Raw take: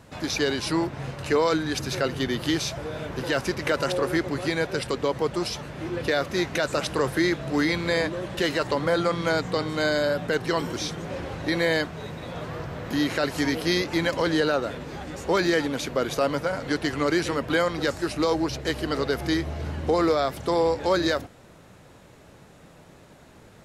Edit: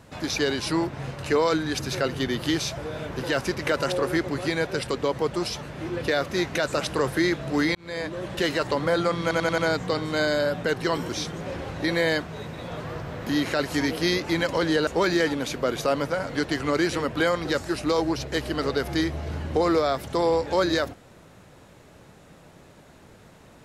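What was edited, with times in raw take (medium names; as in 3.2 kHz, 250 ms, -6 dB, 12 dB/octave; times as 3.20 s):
7.75–8.27 s: fade in
9.22 s: stutter 0.09 s, 5 plays
14.51–15.20 s: delete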